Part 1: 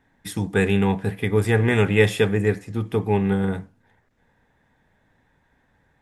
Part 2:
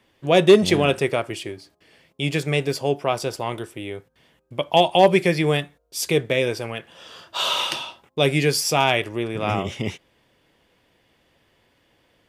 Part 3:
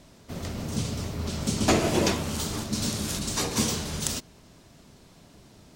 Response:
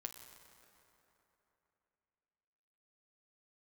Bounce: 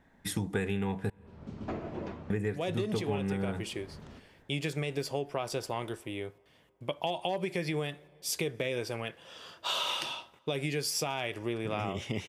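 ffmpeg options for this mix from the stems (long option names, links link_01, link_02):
-filter_complex "[0:a]volume=-2dB,asplit=3[link_01][link_02][link_03];[link_01]atrim=end=1.1,asetpts=PTS-STARTPTS,afade=type=out:start_time=1.096:duration=0.004:curve=hsin[link_04];[link_02]atrim=start=1.1:end=2.3,asetpts=PTS-STARTPTS,volume=0[link_05];[link_03]atrim=start=2.3,asetpts=PTS-STARTPTS,afade=type=in:duration=0.004:curve=hsin[link_06];[link_04][link_05][link_06]concat=n=3:v=0:a=1,asplit=3[link_07][link_08][link_09];[link_08]volume=-21dB[link_10];[1:a]alimiter=limit=-10.5dB:level=0:latency=1:release=93,adelay=2300,volume=-6.5dB,asplit=2[link_11][link_12];[link_12]volume=-18dB[link_13];[2:a]lowpass=1600,volume=-14.5dB[link_14];[link_09]apad=whole_len=253951[link_15];[link_14][link_15]sidechaincompress=threshold=-41dB:ratio=4:attack=16:release=294[link_16];[3:a]atrim=start_sample=2205[link_17];[link_10][link_13]amix=inputs=2:normalize=0[link_18];[link_18][link_17]afir=irnorm=-1:irlink=0[link_19];[link_07][link_11][link_16][link_19]amix=inputs=4:normalize=0,acompressor=threshold=-28dB:ratio=10"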